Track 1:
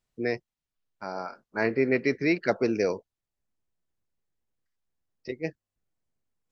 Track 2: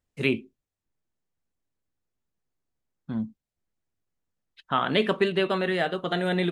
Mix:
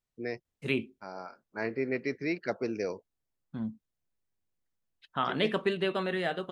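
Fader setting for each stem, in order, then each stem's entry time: −7.5, −5.5 decibels; 0.00, 0.45 seconds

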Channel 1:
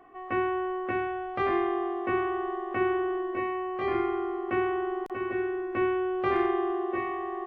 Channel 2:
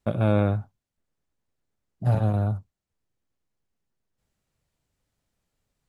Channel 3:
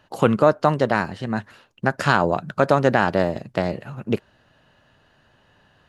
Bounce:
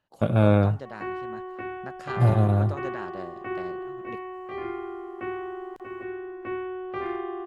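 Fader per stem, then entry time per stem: −5.5, +2.5, −20.0 decibels; 0.70, 0.15, 0.00 seconds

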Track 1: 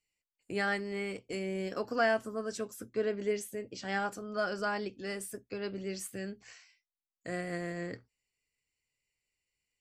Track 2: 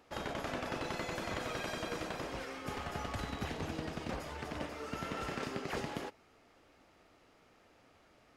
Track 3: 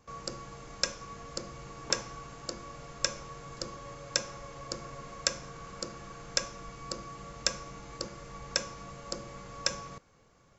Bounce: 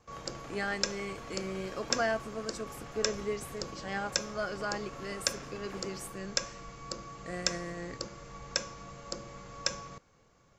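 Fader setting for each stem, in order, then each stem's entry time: −2.5, −10.0, −1.5 decibels; 0.00, 0.00, 0.00 seconds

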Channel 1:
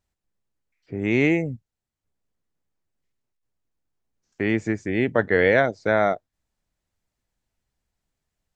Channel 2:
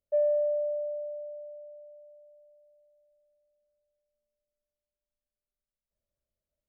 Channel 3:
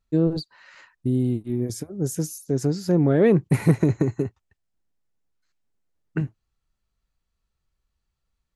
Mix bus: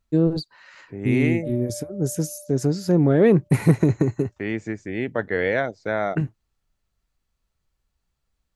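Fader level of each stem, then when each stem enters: −4.5, −10.0, +1.5 decibels; 0.00, 1.30, 0.00 seconds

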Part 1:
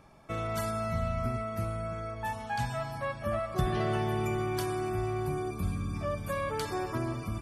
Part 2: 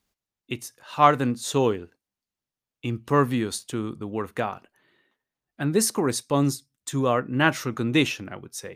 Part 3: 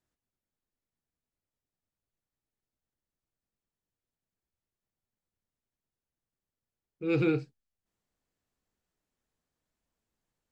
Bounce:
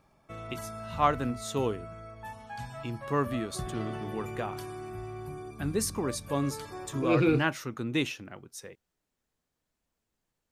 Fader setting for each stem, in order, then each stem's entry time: −8.0, −8.0, +2.5 decibels; 0.00, 0.00, 0.00 seconds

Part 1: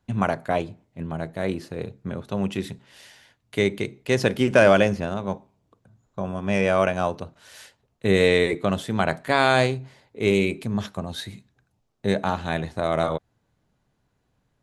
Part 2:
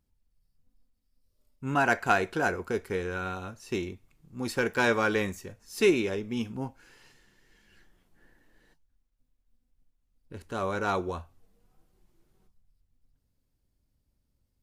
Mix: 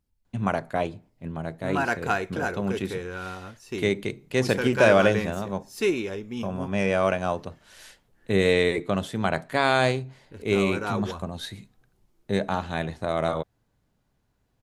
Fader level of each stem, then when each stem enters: −2.5, −1.5 decibels; 0.25, 0.00 seconds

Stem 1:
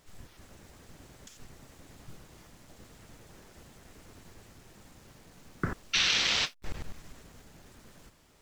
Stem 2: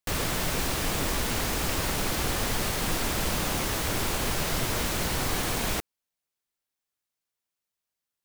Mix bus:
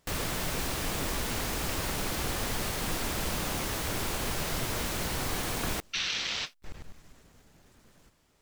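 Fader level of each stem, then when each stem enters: −5.5, −4.0 decibels; 0.00, 0.00 seconds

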